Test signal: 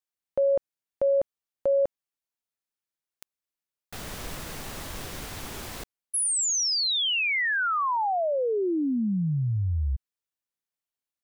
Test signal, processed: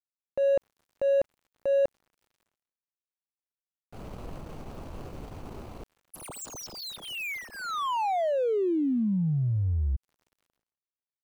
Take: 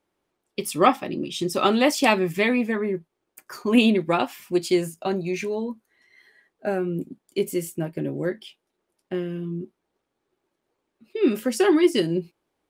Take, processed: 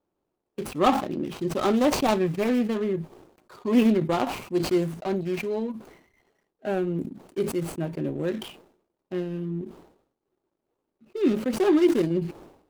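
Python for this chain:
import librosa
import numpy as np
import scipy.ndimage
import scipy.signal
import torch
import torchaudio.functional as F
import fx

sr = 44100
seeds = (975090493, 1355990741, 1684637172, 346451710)

y = scipy.ndimage.median_filter(x, 25, mode='constant')
y = fx.transient(y, sr, attack_db=-4, sustain_db=-8)
y = fx.sustainer(y, sr, db_per_s=92.0)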